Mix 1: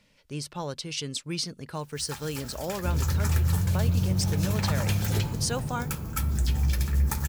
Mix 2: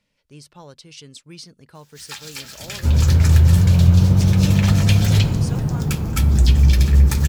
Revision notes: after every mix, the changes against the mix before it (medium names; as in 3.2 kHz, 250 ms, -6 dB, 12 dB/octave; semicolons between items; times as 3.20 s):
speech -8.0 dB; first sound: add frequency weighting D; second sound +12.0 dB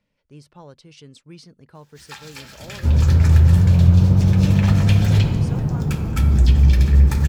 first sound: send +8.5 dB; master: add treble shelf 2.6 kHz -11 dB